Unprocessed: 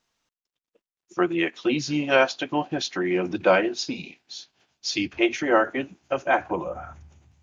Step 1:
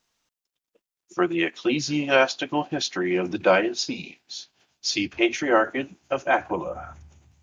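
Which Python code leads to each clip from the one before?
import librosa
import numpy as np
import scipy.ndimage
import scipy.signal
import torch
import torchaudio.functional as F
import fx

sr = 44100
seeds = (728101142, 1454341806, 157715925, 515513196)

y = fx.high_shelf(x, sr, hz=5300.0, db=5.5)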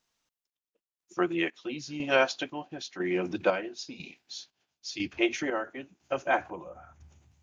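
y = fx.chopper(x, sr, hz=1.0, depth_pct=60, duty_pct=50)
y = y * 10.0 ** (-5.0 / 20.0)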